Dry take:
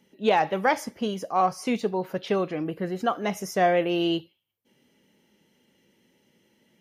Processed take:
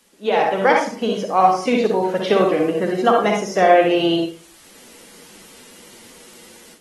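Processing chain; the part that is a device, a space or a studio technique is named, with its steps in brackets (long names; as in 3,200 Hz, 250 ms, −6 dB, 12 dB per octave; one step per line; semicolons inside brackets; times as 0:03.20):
filmed off a television (band-pass filter 230–6,900 Hz; parametric band 500 Hz +4 dB 0.3 octaves; convolution reverb RT60 0.35 s, pre-delay 48 ms, DRR 1.5 dB; white noise bed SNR 32 dB; automatic gain control gain up to 13.5 dB; level −1.5 dB; AAC 32 kbit/s 48,000 Hz)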